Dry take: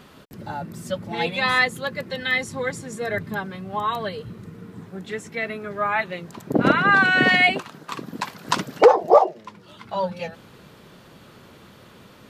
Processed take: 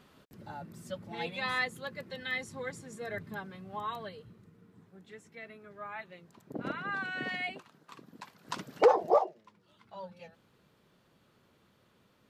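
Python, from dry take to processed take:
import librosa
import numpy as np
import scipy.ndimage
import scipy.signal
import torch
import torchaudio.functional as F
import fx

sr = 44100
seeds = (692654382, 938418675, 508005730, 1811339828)

y = fx.gain(x, sr, db=fx.line((3.9, -12.5), (4.51, -19.5), (8.36, -19.5), (9.0, -7.0), (9.45, -19.5)))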